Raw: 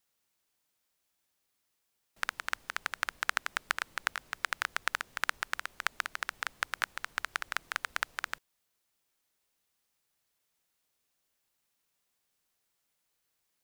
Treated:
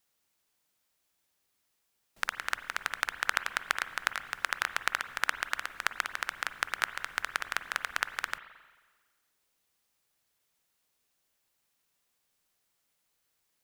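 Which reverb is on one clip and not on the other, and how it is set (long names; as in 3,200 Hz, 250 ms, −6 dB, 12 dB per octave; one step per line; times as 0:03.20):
spring reverb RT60 1.4 s, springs 44/54 ms, chirp 75 ms, DRR 11.5 dB
level +2 dB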